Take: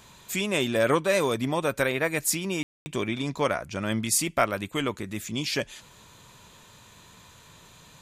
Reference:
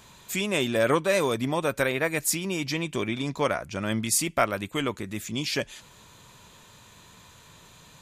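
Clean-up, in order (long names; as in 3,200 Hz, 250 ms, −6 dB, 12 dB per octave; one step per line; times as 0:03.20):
ambience match 0:02.63–0:02.86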